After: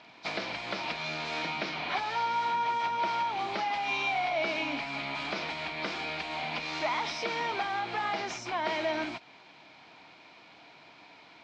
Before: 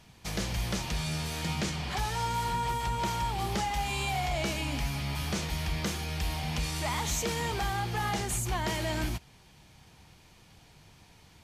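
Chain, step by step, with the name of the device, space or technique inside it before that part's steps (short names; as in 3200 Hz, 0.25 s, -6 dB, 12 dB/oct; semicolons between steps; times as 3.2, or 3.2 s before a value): hearing aid with frequency lowering (nonlinear frequency compression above 3500 Hz 1.5:1; compressor, threshold -33 dBFS, peak gain reduction 6.5 dB; speaker cabinet 290–5300 Hz, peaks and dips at 290 Hz +8 dB, 660 Hz +9 dB, 990 Hz +6 dB, 1400 Hz +6 dB, 2300 Hz +9 dB, 3900 Hz +4 dB); gain +1.5 dB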